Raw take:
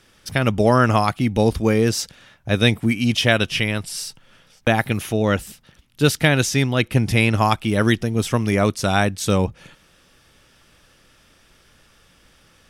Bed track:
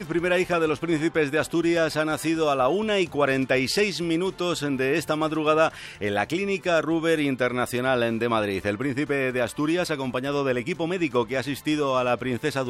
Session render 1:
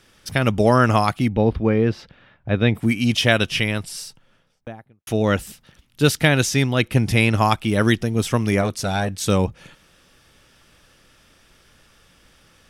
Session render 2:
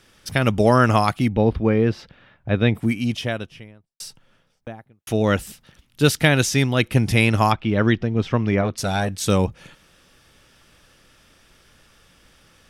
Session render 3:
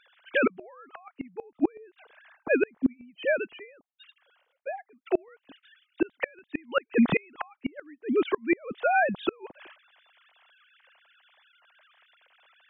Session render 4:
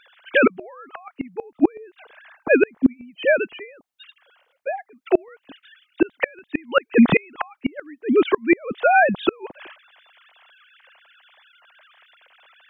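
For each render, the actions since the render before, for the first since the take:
0:01.28–0:02.75: high-frequency loss of the air 380 metres; 0:03.62–0:05.07: fade out and dull; 0:08.61–0:09.11: saturating transformer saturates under 650 Hz
0:02.49–0:04.00: fade out and dull; 0:07.52–0:08.78: high-frequency loss of the air 240 metres
three sine waves on the formant tracks; gate with flip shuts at −12 dBFS, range −34 dB
level +8 dB

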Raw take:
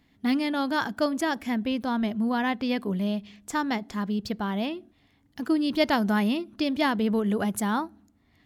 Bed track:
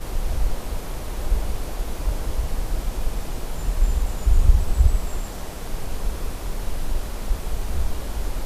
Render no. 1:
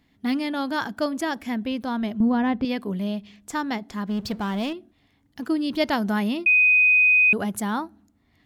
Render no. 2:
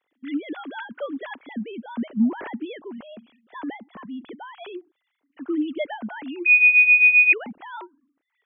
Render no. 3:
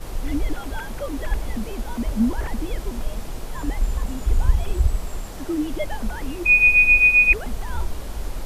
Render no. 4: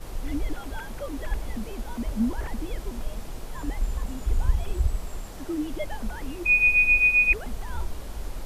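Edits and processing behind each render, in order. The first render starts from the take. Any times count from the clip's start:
0:02.20–0:02.65: spectral tilt −3 dB per octave; 0:04.09–0:04.73: power curve on the samples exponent 0.7; 0:06.46–0:07.33: beep over 2,500 Hz −13.5 dBFS
three sine waves on the formant tracks
mix in bed track −2.5 dB
level −5 dB

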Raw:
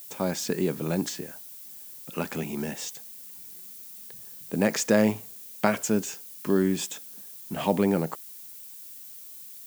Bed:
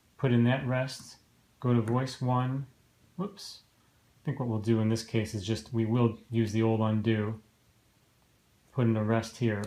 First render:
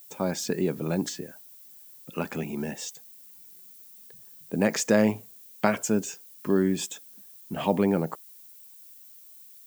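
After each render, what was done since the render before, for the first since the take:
broadband denoise 8 dB, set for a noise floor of −44 dBFS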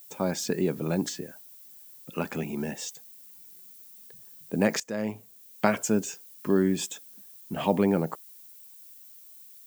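0:04.80–0:05.65: fade in, from −19.5 dB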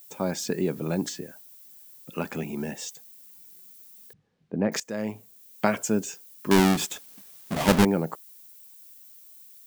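0:04.13–0:04.72: head-to-tape spacing loss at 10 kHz 43 dB
0:06.51–0:07.85: each half-wave held at its own peak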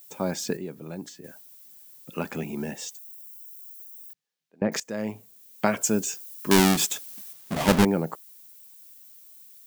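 0:00.57–0:01.24: clip gain −9.5 dB
0:02.95–0:04.62: first difference
0:05.81–0:07.33: high-shelf EQ 3,300 Hz +7.5 dB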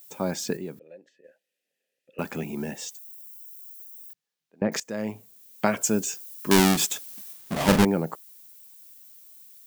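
0:00.79–0:02.19: formant filter e
0:07.25–0:07.77: flutter between parallel walls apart 7 metres, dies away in 0.31 s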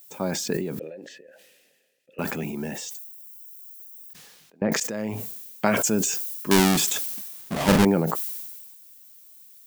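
level that may fall only so fast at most 35 dB per second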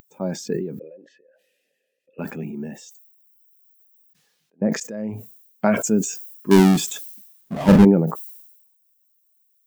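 upward compression, threshold −43 dBFS
every bin expanded away from the loudest bin 1.5 to 1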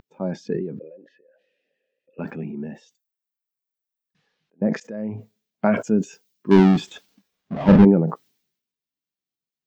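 high-frequency loss of the air 220 metres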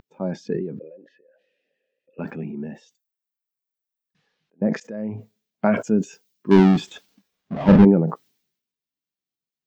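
no processing that can be heard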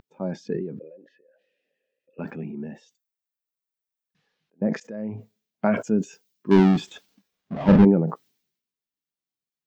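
level −2.5 dB

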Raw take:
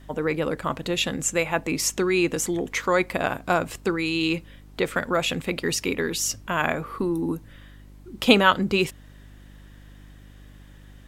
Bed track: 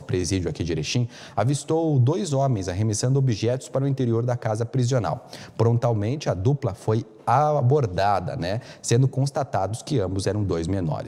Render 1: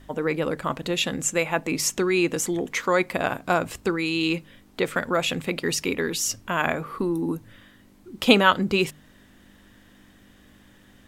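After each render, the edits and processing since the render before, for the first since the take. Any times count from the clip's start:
hum removal 50 Hz, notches 3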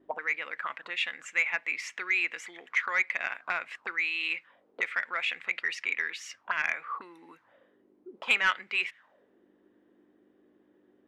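envelope filter 330–2,100 Hz, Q 4.5, up, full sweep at −23.5 dBFS
mid-hump overdrive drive 12 dB, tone 4,200 Hz, clips at −12 dBFS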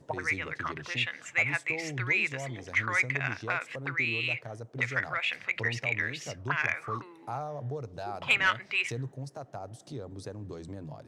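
mix in bed track −17 dB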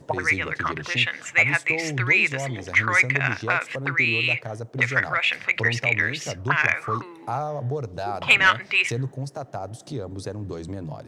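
level +8.5 dB

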